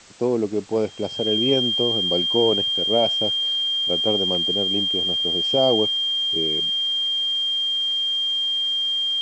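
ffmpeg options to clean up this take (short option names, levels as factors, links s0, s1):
-af "bandreject=f=3200:w=30,afwtdn=0.0056"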